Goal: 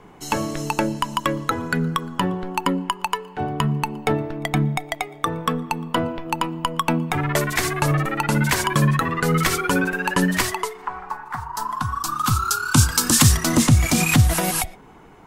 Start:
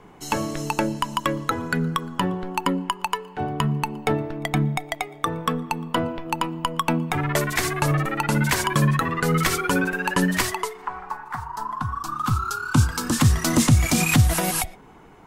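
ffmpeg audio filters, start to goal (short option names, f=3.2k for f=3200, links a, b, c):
-filter_complex "[0:a]asettb=1/sr,asplit=3[a][b][c];[a]atrim=end=11.554[d];[b]atrim=start=11.55:end=13.37,asetpts=PTS-STARTPTS,afade=t=in:d=0.004:c=qsin,afade=t=out:st=1.816:d=0.004:c=qsin,highshelf=f=2.8k:g=11.5[e];[c]atrim=start=13.366[f];[d][e]acrossfade=d=0.004:c1=hsin:c2=qsin[g];[g][f]acrossfade=d=0.004:c1=qsin:c2=hsin,volume=1.5dB"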